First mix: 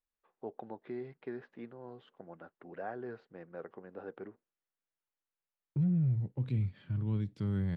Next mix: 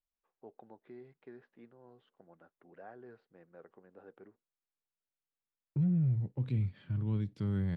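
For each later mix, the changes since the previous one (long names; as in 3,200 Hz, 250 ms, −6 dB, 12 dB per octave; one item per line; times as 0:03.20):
first voice −10.0 dB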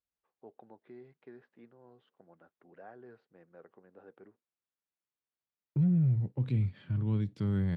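second voice +3.0 dB
master: add high-pass filter 62 Hz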